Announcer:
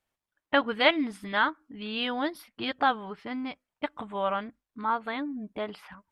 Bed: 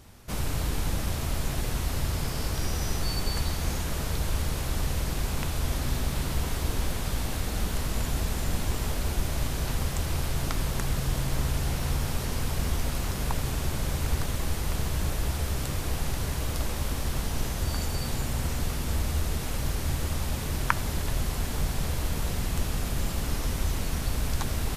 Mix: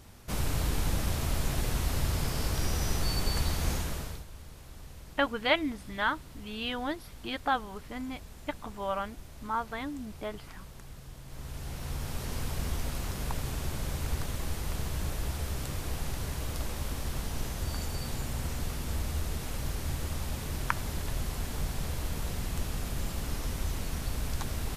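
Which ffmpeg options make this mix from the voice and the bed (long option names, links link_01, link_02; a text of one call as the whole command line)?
ffmpeg -i stem1.wav -i stem2.wav -filter_complex "[0:a]adelay=4650,volume=-4dB[link_01];[1:a]volume=13dB,afade=type=out:start_time=3.72:duration=0.53:silence=0.125893,afade=type=in:start_time=11.24:duration=1.12:silence=0.199526[link_02];[link_01][link_02]amix=inputs=2:normalize=0" out.wav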